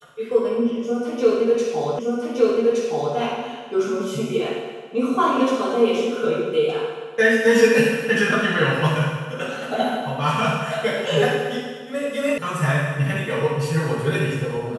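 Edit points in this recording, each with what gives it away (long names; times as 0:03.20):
0:01.99: the same again, the last 1.17 s
0:12.38: cut off before it has died away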